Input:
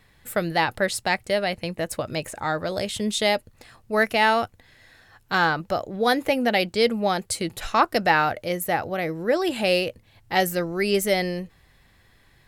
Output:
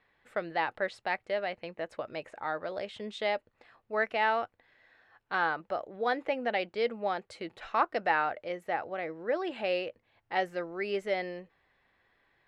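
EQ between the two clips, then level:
high-frequency loss of the air 87 metres
bass and treble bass −13 dB, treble −14 dB
low-shelf EQ 150 Hz −3.5 dB
−7.0 dB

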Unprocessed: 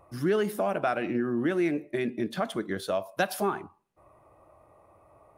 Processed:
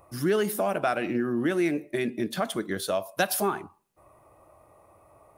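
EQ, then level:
high-shelf EQ 5,100 Hz +10.5 dB
+1.0 dB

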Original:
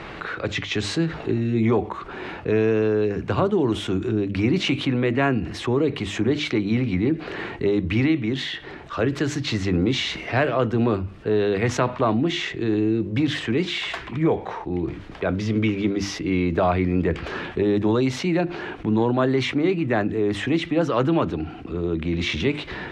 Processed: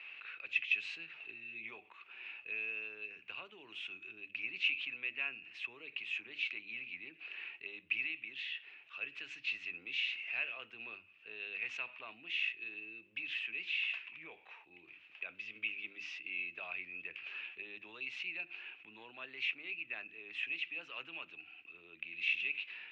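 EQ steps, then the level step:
resonant band-pass 2,600 Hz, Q 16
+2.5 dB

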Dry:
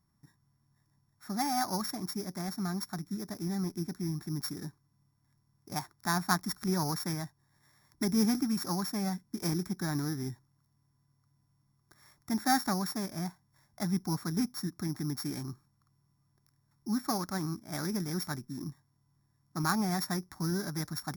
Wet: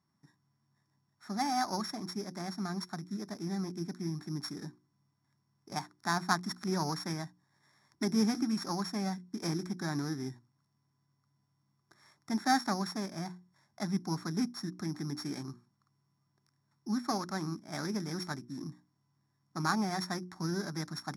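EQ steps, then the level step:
band-pass filter 150–7,100 Hz
mains-hum notches 60/120/180/240/300/360 Hz
0.0 dB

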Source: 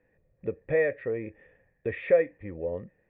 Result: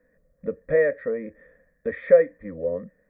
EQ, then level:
phaser with its sweep stopped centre 550 Hz, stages 8
+6.5 dB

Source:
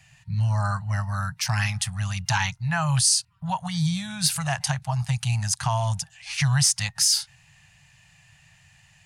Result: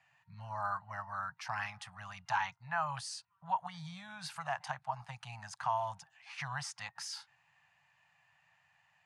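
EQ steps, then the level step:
resonant band-pass 990 Hz, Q 1.4
−4.5 dB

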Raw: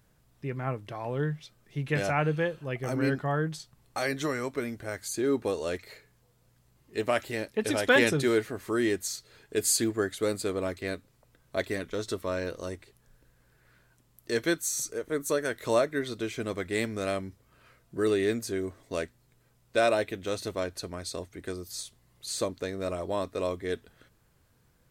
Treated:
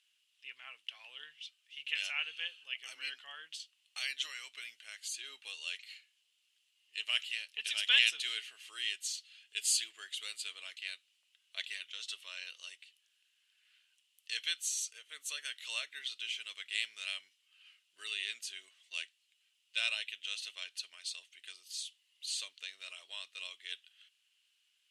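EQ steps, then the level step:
high-pass with resonance 2,900 Hz, resonance Q 8.1
low-pass filter 11,000 Hz 24 dB per octave
−6.0 dB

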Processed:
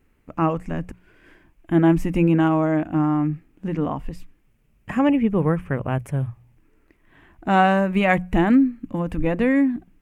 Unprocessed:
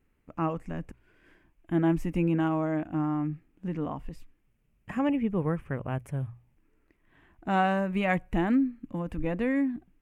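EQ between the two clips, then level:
mains-hum notches 60/120/180 Hz
+8.5 dB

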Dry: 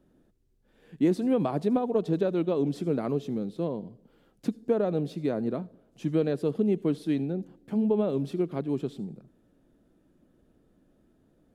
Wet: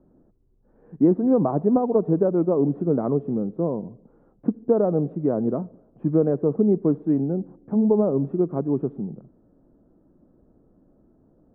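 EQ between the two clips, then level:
inverse Chebyshev low-pass filter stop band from 5,000 Hz, stop band 70 dB
+6.0 dB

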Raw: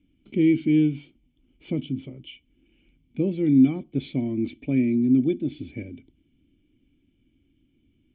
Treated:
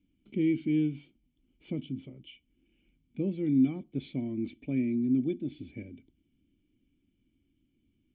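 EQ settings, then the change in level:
parametric band 200 Hz +4 dB 0.26 octaves
−8.0 dB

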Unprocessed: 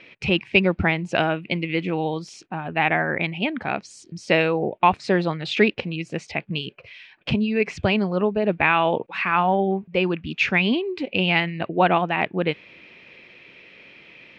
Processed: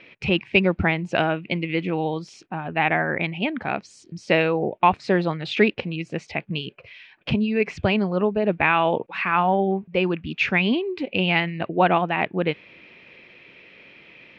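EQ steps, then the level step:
high-shelf EQ 6,700 Hz −10 dB
0.0 dB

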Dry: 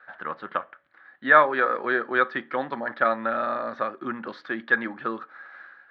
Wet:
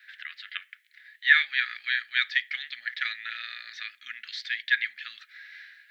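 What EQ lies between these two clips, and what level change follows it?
elliptic high-pass filter 2,000 Hz, stop band 50 dB
high-shelf EQ 4,100 Hz +11 dB
+8.5 dB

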